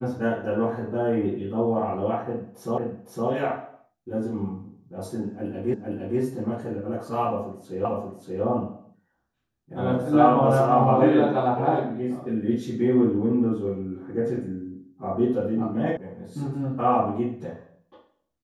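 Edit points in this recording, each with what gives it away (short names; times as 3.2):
2.78 repeat of the last 0.51 s
5.74 repeat of the last 0.46 s
7.85 repeat of the last 0.58 s
15.97 sound cut off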